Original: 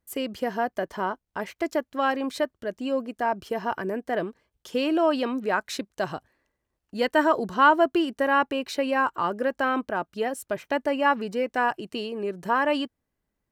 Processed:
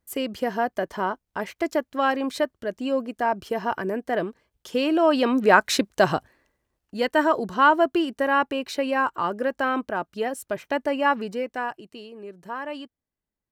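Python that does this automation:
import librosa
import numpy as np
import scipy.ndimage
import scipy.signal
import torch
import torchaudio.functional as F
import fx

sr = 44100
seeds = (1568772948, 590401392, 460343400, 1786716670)

y = fx.gain(x, sr, db=fx.line((5.0, 2.0), (5.51, 9.5), (6.16, 9.5), (6.98, 0.5), (11.24, 0.5), (11.94, -9.5)))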